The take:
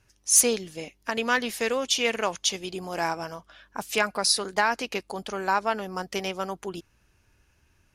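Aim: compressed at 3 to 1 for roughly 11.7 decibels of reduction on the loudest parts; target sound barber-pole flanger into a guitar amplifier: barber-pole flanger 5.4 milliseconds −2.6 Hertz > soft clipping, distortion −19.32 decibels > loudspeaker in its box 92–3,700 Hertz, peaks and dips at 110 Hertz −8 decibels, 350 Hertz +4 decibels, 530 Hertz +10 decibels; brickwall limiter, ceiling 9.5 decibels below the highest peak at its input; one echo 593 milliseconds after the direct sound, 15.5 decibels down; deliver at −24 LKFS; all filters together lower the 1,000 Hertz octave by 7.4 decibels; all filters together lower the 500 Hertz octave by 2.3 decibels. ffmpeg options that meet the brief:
ffmpeg -i in.wav -filter_complex "[0:a]equalizer=frequency=500:width_type=o:gain=-7.5,equalizer=frequency=1000:width_type=o:gain=-8,acompressor=threshold=-30dB:ratio=3,alimiter=level_in=2dB:limit=-24dB:level=0:latency=1,volume=-2dB,aecho=1:1:593:0.168,asplit=2[link_01][link_02];[link_02]adelay=5.4,afreqshift=-2.6[link_03];[link_01][link_03]amix=inputs=2:normalize=1,asoftclip=threshold=-32dB,highpass=92,equalizer=frequency=110:width_type=q:width=4:gain=-8,equalizer=frequency=350:width_type=q:width=4:gain=4,equalizer=frequency=530:width_type=q:width=4:gain=10,lowpass=frequency=3700:width=0.5412,lowpass=frequency=3700:width=1.3066,volume=17.5dB" out.wav

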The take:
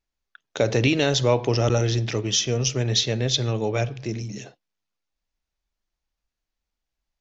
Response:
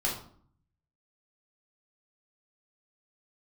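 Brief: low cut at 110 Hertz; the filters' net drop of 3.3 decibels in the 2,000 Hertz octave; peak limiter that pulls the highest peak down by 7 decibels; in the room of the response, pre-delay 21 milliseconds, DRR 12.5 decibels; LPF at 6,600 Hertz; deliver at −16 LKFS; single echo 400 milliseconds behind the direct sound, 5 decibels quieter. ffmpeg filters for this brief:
-filter_complex "[0:a]highpass=110,lowpass=6600,equalizer=frequency=2000:width_type=o:gain=-4.5,alimiter=limit=-15.5dB:level=0:latency=1,aecho=1:1:400:0.562,asplit=2[link_01][link_02];[1:a]atrim=start_sample=2205,adelay=21[link_03];[link_02][link_03]afir=irnorm=-1:irlink=0,volume=-19.5dB[link_04];[link_01][link_04]amix=inputs=2:normalize=0,volume=9dB"

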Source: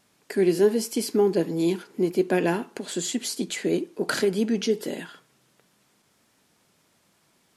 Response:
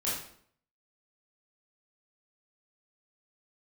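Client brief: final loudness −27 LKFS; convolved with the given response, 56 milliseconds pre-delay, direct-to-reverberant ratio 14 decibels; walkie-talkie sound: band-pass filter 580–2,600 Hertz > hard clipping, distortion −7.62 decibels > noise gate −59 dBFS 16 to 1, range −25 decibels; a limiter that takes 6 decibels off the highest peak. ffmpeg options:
-filter_complex "[0:a]alimiter=limit=-15.5dB:level=0:latency=1,asplit=2[link_01][link_02];[1:a]atrim=start_sample=2205,adelay=56[link_03];[link_02][link_03]afir=irnorm=-1:irlink=0,volume=-20dB[link_04];[link_01][link_04]amix=inputs=2:normalize=0,highpass=580,lowpass=2600,asoftclip=type=hard:threshold=-33.5dB,agate=range=-25dB:threshold=-59dB:ratio=16,volume=11.5dB"

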